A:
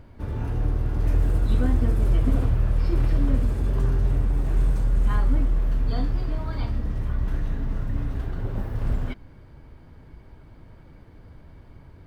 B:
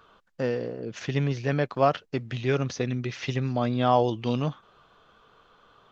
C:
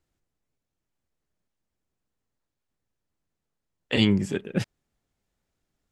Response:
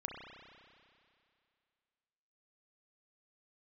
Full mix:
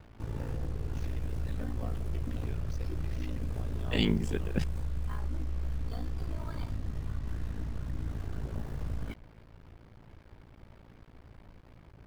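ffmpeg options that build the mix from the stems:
-filter_complex "[0:a]alimiter=limit=0.0944:level=0:latency=1:release=67,volume=0.631[s0];[1:a]bandreject=f=46.98:t=h:w=4,bandreject=f=93.96:t=h:w=4,bandreject=f=140.94:t=h:w=4,bandreject=f=187.92:t=h:w=4,bandreject=f=234.9:t=h:w=4,bandreject=f=281.88:t=h:w=4,bandreject=f=328.86:t=h:w=4,bandreject=f=375.84:t=h:w=4,bandreject=f=422.82:t=h:w=4,bandreject=f=469.8:t=h:w=4,bandreject=f=516.78:t=h:w=4,bandreject=f=563.76:t=h:w=4,bandreject=f=610.74:t=h:w=4,bandreject=f=657.72:t=h:w=4,bandreject=f=704.7:t=h:w=4,bandreject=f=751.68:t=h:w=4,bandreject=f=798.66:t=h:w=4,bandreject=f=845.64:t=h:w=4,bandreject=f=892.62:t=h:w=4,bandreject=f=939.6:t=h:w=4,bandreject=f=986.58:t=h:w=4,bandreject=f=1033.56:t=h:w=4,bandreject=f=1080.54:t=h:w=4,bandreject=f=1127.52:t=h:w=4,bandreject=f=1174.5:t=h:w=4,bandreject=f=1221.48:t=h:w=4,bandreject=f=1268.46:t=h:w=4,bandreject=f=1315.44:t=h:w=4,bandreject=f=1362.42:t=h:w=4,bandreject=f=1409.4:t=h:w=4,bandreject=f=1456.38:t=h:w=4,bandreject=f=1503.36:t=h:w=4,bandreject=f=1550.34:t=h:w=4,bandreject=f=1597.32:t=h:w=4,bandreject=f=1644.3:t=h:w=4,bandreject=f=1691.28:t=h:w=4,bandreject=f=1738.26:t=h:w=4,acompressor=threshold=0.0251:ratio=2.5,volume=0.237[s1];[2:a]volume=0.631[s2];[s0][s1][s2]amix=inputs=3:normalize=0,aeval=exprs='val(0)*sin(2*PI*28*n/s)':c=same,acrusher=bits=8:mix=0:aa=0.5"

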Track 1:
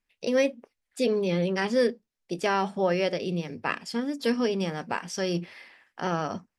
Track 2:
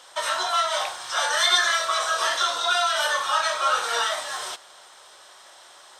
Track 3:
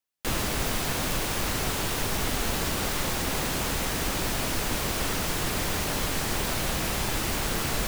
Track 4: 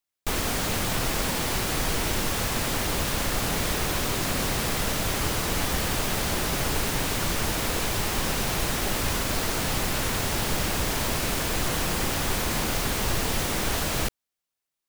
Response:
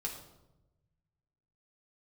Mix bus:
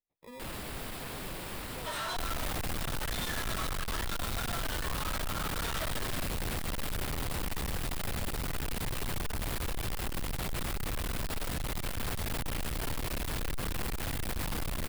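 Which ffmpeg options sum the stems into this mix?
-filter_complex "[0:a]asubboost=boost=11:cutoff=55,alimiter=limit=0.1:level=0:latency=1:release=498,acrusher=samples=30:mix=1:aa=0.000001,volume=0.106,asplit=2[s0][s1];[1:a]volume=13.3,asoftclip=hard,volume=0.075,adelay=1700,volume=1.41[s2];[2:a]adelay=150,volume=0.316[s3];[3:a]lowshelf=f=100:g=11.5,adelay=1900,volume=1[s4];[s1]apad=whole_len=339181[s5];[s2][s5]sidechaincompress=threshold=0.00251:ratio=8:attack=25:release=1400[s6];[s0][s6][s3][s4]amix=inputs=4:normalize=0,equalizer=f=6200:t=o:w=0.41:g=-9.5,aeval=exprs='(tanh(39.8*val(0)+0.2)-tanh(0.2))/39.8':c=same"

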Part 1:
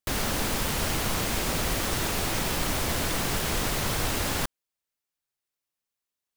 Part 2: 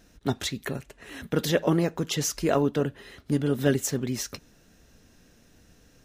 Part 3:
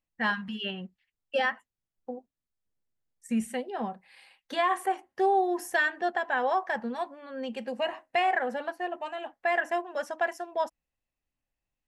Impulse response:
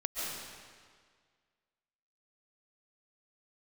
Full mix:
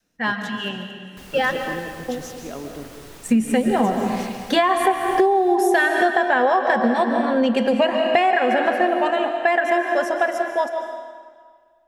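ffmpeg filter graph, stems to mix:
-filter_complex "[0:a]adelay=1100,volume=0.133,asplit=2[s0][s1];[s1]volume=0.168[s2];[1:a]highpass=130,volume=0.168,asplit=2[s3][s4];[s4]volume=0.631[s5];[2:a]dynaudnorm=f=250:g=21:m=4.47,volume=1.19,asplit=2[s6][s7];[s7]volume=0.473[s8];[3:a]atrim=start_sample=2205[s9];[s2][s5][s8]amix=inputs=3:normalize=0[s10];[s10][s9]afir=irnorm=-1:irlink=0[s11];[s0][s3][s6][s11]amix=inputs=4:normalize=0,adynamicequalizer=threshold=0.0447:dfrequency=280:dqfactor=0.83:tfrequency=280:tqfactor=0.83:attack=5:release=100:ratio=0.375:range=2.5:mode=boostabove:tftype=bell,acompressor=threshold=0.2:ratio=10"

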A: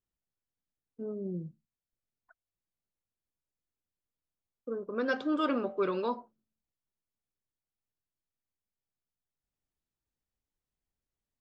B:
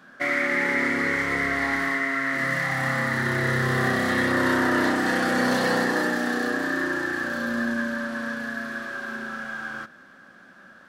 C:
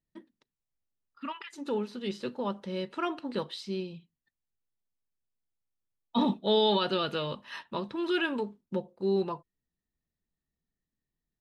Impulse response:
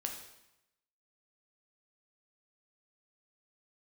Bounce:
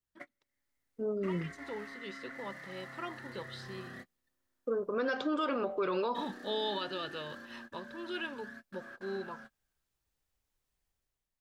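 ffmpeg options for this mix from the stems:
-filter_complex "[0:a]dynaudnorm=f=120:g=9:m=2.82,volume=0.841[s0];[1:a]acompressor=threshold=0.0355:ratio=5,aphaser=in_gain=1:out_gain=1:delay=3.5:decay=0.31:speed=0.22:type=sinusoidal,volume=0.15[s1];[2:a]volume=0.398,asplit=2[s2][s3];[s3]apad=whole_len=479921[s4];[s1][s4]sidechaingate=range=0.00562:threshold=0.00158:ratio=16:detection=peak[s5];[s0][s2]amix=inputs=2:normalize=0,equalizer=f=220:w=0.93:g=-7,alimiter=level_in=1.06:limit=0.0631:level=0:latency=1:release=80,volume=0.944,volume=1[s6];[s5][s6]amix=inputs=2:normalize=0"

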